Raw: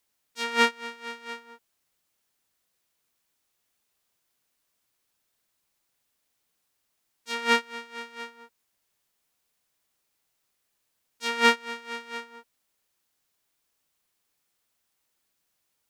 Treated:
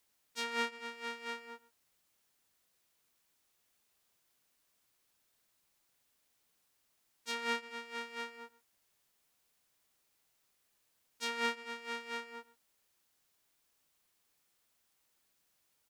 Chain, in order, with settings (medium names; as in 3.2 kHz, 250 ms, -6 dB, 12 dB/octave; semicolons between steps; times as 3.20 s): echo from a far wall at 22 m, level -20 dB; compression 2.5:1, threshold -37 dBFS, peak gain reduction 16.5 dB